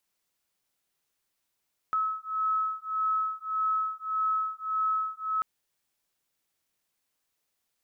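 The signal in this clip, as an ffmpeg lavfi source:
ffmpeg -f lavfi -i "aevalsrc='0.0335*(sin(2*PI*1290*t)+sin(2*PI*1291.7*t))':duration=3.49:sample_rate=44100" out.wav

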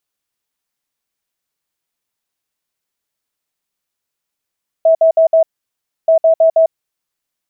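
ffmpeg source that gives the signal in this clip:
ffmpeg -f lavfi -i "aevalsrc='0.501*sin(2*PI*650*t)*clip(min(mod(mod(t,1.23),0.16),0.1-mod(mod(t,1.23),0.16))/0.005,0,1)*lt(mod(t,1.23),0.64)':duration=2.46:sample_rate=44100" out.wav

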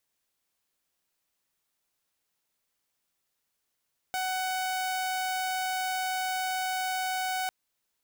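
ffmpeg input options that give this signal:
ffmpeg -f lavfi -i "aevalsrc='0.0501*(2*mod(747*t,1)-1)':duration=3.35:sample_rate=44100" out.wav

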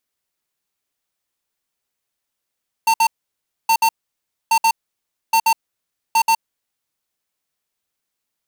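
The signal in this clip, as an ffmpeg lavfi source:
ffmpeg -f lavfi -i "aevalsrc='0.2*(2*lt(mod(904*t,1),0.5)-1)*clip(min(mod(mod(t,0.82),0.13),0.07-mod(mod(t,0.82),0.13))/0.005,0,1)*lt(mod(t,0.82),0.26)':duration=4.1:sample_rate=44100" out.wav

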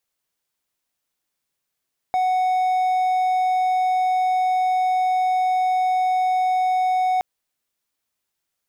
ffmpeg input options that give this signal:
ffmpeg -f lavfi -i "aevalsrc='0.178*(1-4*abs(mod(741*t+0.25,1)-0.5))':duration=5.07:sample_rate=44100" out.wav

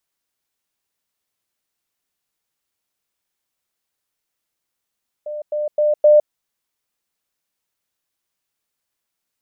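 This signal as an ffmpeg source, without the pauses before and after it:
ffmpeg -f lavfi -i "aevalsrc='pow(10,(-25+6*floor(t/0.26))/20)*sin(2*PI*599*t)*clip(min(mod(t,0.26),0.16-mod(t,0.26))/0.005,0,1)':duration=1.04:sample_rate=44100" out.wav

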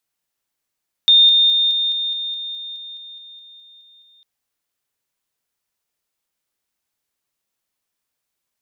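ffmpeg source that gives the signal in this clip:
ffmpeg -f lavfi -i "aevalsrc='pow(10,(-7.5-3*floor(t/0.21))/20)*sin(2*PI*3640*t)':duration=3.15:sample_rate=44100" out.wav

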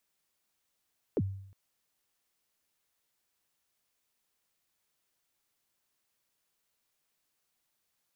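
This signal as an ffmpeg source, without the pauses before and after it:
ffmpeg -f lavfi -i "aevalsrc='0.0668*pow(10,-3*t/0.7)*sin(2*PI*(530*0.046/log(97/530)*(exp(log(97/530)*min(t,0.046)/0.046)-1)+97*max(t-0.046,0)))':duration=0.36:sample_rate=44100" out.wav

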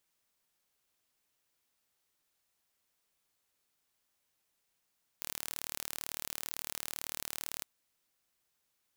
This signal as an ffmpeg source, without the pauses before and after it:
ffmpeg -f lavfi -i "aevalsrc='0.282*eq(mod(n,1164),0)':duration=2.41:sample_rate=44100" out.wav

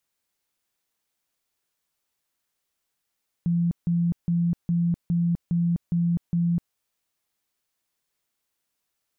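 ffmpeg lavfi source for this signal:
ffmpeg -f lavfi -i "aevalsrc='0.106*sin(2*PI*171*mod(t,0.41))*lt(mod(t,0.41),43/171)':duration=3.28:sample_rate=44100" out.wav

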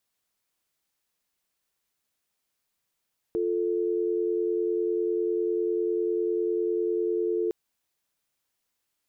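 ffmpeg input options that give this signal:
ffmpeg -f lavfi -i "aevalsrc='0.0473*(sin(2*PI*350*t)+sin(2*PI*440*t))':duration=4.16:sample_rate=44100" out.wav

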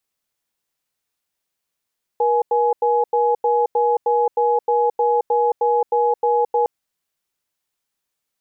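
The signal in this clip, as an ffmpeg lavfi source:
ffmpeg -f lavfi -i "aevalsrc='0.141*(sin(2*PI*478*t)+sin(2*PI*840*t))*clip(min(mod(t,0.31),0.22-mod(t,0.31))/0.005,0,1)':duration=4.46:sample_rate=44100" out.wav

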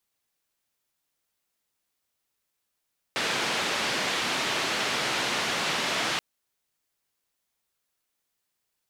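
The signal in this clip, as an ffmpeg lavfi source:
ffmpeg -f lavfi -i "anoisesrc=color=white:duration=3.03:sample_rate=44100:seed=1,highpass=frequency=160,lowpass=frequency=3600,volume=-15.5dB" out.wav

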